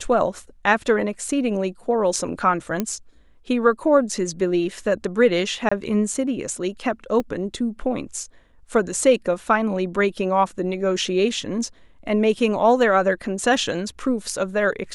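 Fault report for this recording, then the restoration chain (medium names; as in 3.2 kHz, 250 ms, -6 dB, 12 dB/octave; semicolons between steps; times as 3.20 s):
2.80 s: pop -9 dBFS
5.69–5.71 s: dropout 25 ms
7.20 s: dropout 2.3 ms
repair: de-click; interpolate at 5.69 s, 25 ms; interpolate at 7.20 s, 2.3 ms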